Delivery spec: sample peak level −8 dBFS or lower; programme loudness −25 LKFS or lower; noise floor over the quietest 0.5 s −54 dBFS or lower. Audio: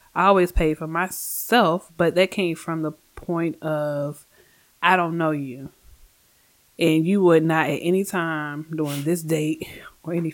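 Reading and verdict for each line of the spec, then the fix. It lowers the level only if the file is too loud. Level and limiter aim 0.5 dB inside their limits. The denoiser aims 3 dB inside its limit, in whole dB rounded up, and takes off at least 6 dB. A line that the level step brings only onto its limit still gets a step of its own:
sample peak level −3.5 dBFS: out of spec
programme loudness −22.0 LKFS: out of spec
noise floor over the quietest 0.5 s −59 dBFS: in spec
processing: level −3.5 dB
brickwall limiter −8.5 dBFS

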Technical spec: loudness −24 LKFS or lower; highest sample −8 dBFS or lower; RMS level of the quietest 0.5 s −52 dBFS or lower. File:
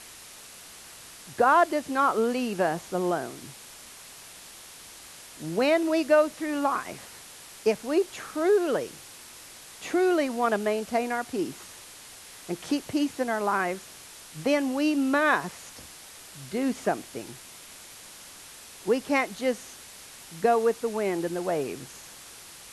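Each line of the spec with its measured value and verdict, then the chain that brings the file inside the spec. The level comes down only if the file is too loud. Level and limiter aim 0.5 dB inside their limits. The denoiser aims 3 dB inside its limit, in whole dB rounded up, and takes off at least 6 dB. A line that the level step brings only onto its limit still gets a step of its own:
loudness −26.5 LKFS: in spec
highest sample −10.0 dBFS: in spec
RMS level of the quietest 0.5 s −47 dBFS: out of spec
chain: broadband denoise 8 dB, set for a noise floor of −47 dBFS

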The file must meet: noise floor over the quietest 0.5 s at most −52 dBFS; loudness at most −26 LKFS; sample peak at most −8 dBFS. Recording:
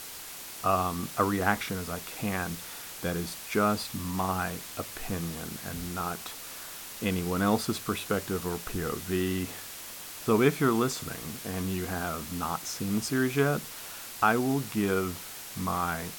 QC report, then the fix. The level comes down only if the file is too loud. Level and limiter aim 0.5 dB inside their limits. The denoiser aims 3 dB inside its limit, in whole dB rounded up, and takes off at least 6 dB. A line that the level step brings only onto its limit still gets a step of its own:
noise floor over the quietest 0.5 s −42 dBFS: out of spec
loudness −30.5 LKFS: in spec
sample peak −8.5 dBFS: in spec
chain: broadband denoise 13 dB, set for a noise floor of −42 dBFS

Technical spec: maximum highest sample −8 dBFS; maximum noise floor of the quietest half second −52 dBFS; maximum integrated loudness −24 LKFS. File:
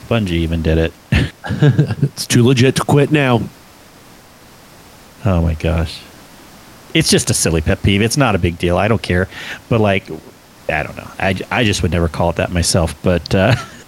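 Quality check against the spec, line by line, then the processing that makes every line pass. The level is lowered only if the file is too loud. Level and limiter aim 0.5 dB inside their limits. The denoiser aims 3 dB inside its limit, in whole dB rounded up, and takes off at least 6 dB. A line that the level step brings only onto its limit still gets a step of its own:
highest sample −1.5 dBFS: out of spec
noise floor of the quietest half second −42 dBFS: out of spec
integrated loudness −15.5 LKFS: out of spec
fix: broadband denoise 6 dB, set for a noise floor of −42 dBFS
level −9 dB

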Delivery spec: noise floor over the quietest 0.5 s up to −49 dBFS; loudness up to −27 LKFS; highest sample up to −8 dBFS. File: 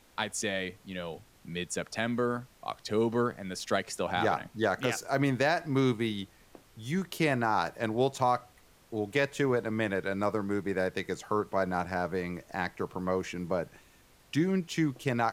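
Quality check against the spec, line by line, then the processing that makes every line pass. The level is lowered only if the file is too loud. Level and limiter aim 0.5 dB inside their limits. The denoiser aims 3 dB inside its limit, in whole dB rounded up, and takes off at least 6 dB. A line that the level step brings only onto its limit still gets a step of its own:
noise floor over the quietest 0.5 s −60 dBFS: in spec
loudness −31.0 LKFS: in spec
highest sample −14.5 dBFS: in spec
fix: no processing needed

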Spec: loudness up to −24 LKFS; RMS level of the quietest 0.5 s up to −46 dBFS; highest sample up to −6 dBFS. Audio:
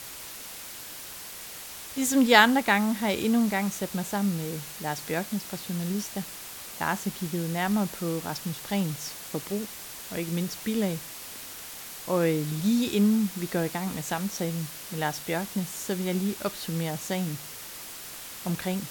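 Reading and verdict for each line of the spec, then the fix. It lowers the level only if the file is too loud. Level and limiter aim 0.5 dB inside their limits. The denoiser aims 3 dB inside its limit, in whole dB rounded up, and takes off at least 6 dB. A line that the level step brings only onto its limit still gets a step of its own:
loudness −28.5 LKFS: in spec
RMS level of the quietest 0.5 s −41 dBFS: out of spec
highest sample −3.0 dBFS: out of spec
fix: broadband denoise 8 dB, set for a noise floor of −41 dBFS
brickwall limiter −6.5 dBFS

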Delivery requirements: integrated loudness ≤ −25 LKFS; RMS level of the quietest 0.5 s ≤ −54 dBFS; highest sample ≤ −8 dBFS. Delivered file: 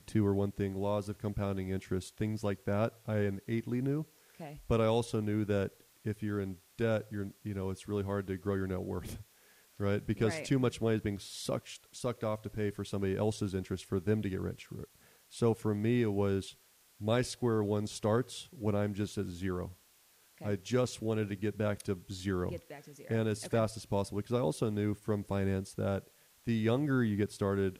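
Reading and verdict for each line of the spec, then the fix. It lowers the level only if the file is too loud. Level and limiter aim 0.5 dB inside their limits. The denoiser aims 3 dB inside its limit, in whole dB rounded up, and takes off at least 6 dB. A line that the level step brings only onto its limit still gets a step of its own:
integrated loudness −34.5 LKFS: in spec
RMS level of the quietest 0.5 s −65 dBFS: in spec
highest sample −17.0 dBFS: in spec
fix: no processing needed

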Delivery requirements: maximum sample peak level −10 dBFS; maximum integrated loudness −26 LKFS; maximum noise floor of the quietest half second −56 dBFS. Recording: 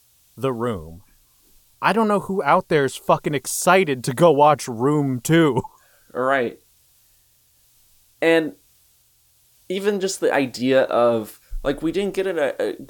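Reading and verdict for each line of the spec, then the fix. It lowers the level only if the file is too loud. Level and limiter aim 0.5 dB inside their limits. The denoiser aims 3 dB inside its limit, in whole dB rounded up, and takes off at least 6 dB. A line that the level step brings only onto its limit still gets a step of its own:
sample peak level −3.5 dBFS: out of spec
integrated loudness −20.0 LKFS: out of spec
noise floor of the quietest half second −59 dBFS: in spec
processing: level −6.5 dB
brickwall limiter −10.5 dBFS

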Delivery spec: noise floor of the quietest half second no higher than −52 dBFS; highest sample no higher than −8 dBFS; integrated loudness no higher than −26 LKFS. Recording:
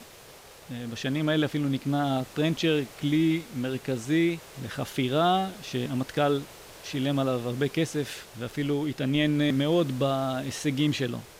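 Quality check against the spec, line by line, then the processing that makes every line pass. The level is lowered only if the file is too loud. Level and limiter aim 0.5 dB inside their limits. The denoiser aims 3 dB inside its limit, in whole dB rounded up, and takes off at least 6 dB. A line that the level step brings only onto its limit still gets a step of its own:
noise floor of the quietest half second −49 dBFS: out of spec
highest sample −13.5 dBFS: in spec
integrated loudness −27.5 LKFS: in spec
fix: broadband denoise 6 dB, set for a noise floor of −49 dBFS

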